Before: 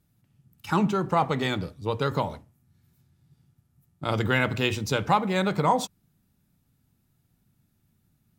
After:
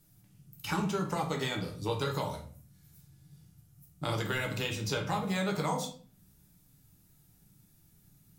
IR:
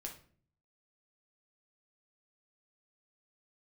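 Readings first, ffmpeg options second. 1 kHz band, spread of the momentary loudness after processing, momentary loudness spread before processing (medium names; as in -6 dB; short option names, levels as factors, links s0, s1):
-10.0 dB, 8 LU, 8 LU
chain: -filter_complex "[0:a]bass=f=250:g=0,treble=f=4000:g=9,acrossover=split=520|4100[s0][s1][s2];[s0]acompressor=threshold=0.0112:ratio=4[s3];[s1]acompressor=threshold=0.0126:ratio=4[s4];[s2]acompressor=threshold=0.00355:ratio=4[s5];[s3][s4][s5]amix=inputs=3:normalize=0[s6];[1:a]atrim=start_sample=2205,afade=t=out:st=0.41:d=0.01,atrim=end_sample=18522[s7];[s6][s7]afir=irnorm=-1:irlink=0,volume=2.11"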